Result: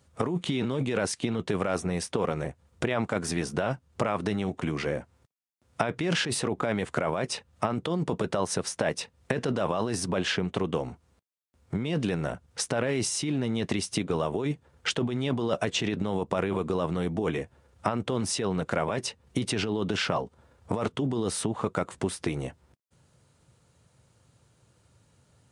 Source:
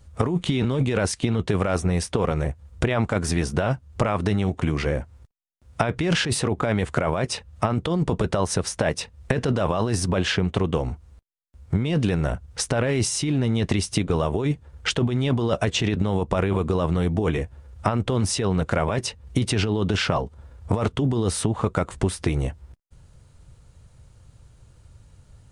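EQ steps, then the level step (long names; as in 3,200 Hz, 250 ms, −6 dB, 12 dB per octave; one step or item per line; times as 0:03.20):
high-pass filter 160 Hz 12 dB per octave
−4.0 dB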